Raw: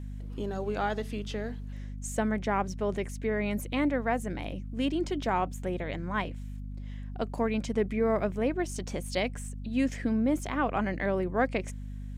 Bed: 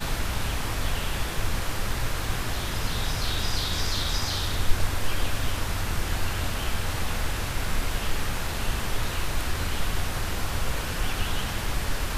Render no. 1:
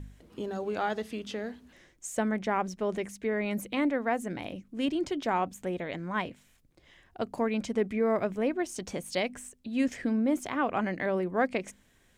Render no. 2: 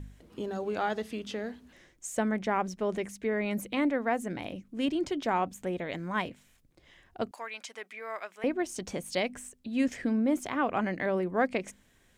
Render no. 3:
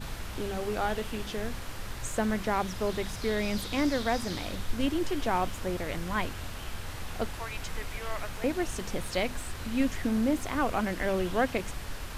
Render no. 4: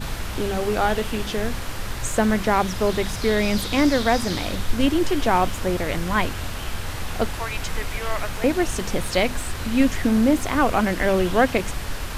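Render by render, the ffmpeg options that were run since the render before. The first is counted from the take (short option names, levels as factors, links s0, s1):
-af "bandreject=f=50:t=h:w=4,bandreject=f=100:t=h:w=4,bandreject=f=150:t=h:w=4,bandreject=f=200:t=h:w=4,bandreject=f=250:t=h:w=4"
-filter_complex "[0:a]asettb=1/sr,asplit=3[s0][s1][s2];[s0]atrim=end=5.884[s3];[s1]atrim=start=5.88:end=6.29,asetpts=PTS-STARTPTS,afade=t=in:d=0.004:c=qsin,afade=t=out:st=0.406:d=0.004:c=qsin,highshelf=f=6000:g=7.5[s4];[s2]atrim=start=6.286[s5];[s3][s4]acrossfade=d=0.004:c1=hsin:c2=qsin[s6];[s6][s5]acrossfade=d=0.004:c1=qsin:c2=hsin,asettb=1/sr,asplit=3[s7][s8][s9];[s7]atrim=end=7.314[s10];[s8]atrim=start=7.31:end=8.44,asetpts=PTS-STARTPTS,afade=t=in:d=0.004:c=qsin,afade=t=out:st=1.126:d=0.004:c=qsin,highpass=1200[s11];[s9]atrim=start=8.436[s12];[s10][s11]acrossfade=d=0.004:c1=hsin:c2=qsin[s13];[s13][s12]acrossfade=d=0.004:c1=qsin:c2=hsin"
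-filter_complex "[1:a]volume=0.299[s0];[0:a][s0]amix=inputs=2:normalize=0"
-af "volume=2.82"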